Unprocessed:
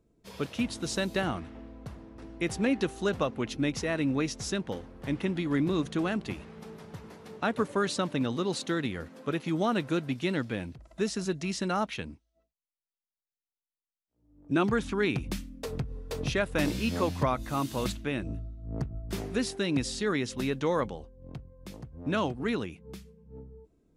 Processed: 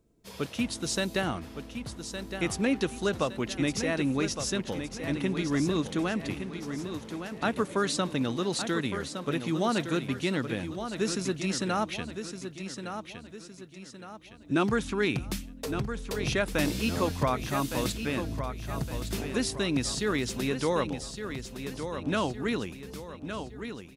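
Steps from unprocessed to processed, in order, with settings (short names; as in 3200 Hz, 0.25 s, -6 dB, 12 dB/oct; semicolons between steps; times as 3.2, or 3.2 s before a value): high shelf 4500 Hz +6 dB; on a send: feedback echo 1.163 s, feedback 42%, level -8.5 dB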